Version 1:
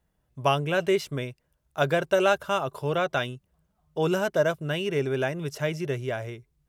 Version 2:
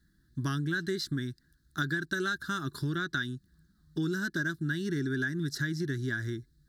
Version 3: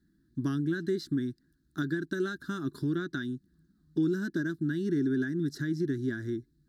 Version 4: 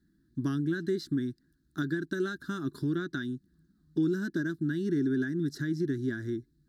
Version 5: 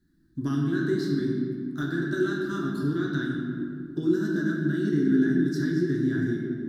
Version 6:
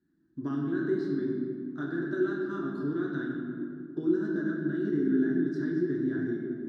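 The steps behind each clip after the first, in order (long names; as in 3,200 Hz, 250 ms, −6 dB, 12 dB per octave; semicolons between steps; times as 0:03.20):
drawn EQ curve 130 Hz 0 dB, 220 Hz +4 dB, 330 Hz +6 dB, 520 Hz −29 dB, 880 Hz −22 dB, 1,700 Hz +9 dB, 2,500 Hz −26 dB, 4,000 Hz +10 dB, 6,000 Hz 0 dB, 12,000 Hz −2 dB; downward compressor 6 to 1, threshold −34 dBFS, peak gain reduction 13 dB; level +5 dB
parametric band 290 Hz +14 dB 1.8 octaves; level −8 dB
no processing that can be heard
convolution reverb RT60 2.2 s, pre-delay 7 ms, DRR −3.5 dB
resonant band-pass 590 Hz, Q 0.74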